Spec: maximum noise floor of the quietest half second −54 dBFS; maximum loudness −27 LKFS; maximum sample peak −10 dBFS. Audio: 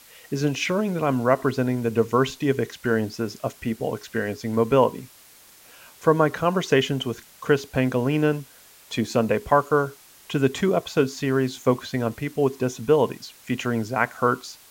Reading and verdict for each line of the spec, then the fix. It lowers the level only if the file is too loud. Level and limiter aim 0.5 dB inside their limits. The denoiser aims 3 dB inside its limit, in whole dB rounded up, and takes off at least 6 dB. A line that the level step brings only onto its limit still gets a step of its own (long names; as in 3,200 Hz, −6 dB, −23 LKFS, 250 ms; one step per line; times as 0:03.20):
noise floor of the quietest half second −51 dBFS: out of spec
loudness −24.0 LKFS: out of spec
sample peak −3.5 dBFS: out of spec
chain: level −3.5 dB
brickwall limiter −10.5 dBFS